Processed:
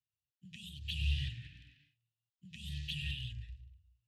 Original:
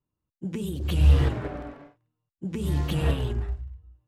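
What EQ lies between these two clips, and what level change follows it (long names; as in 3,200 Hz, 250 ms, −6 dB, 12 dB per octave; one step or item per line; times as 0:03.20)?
formant filter e
elliptic band-stop filter 120–3,400 Hz, stop band 80 dB
parametric band 400 Hz −4.5 dB 0.33 octaves
+18.0 dB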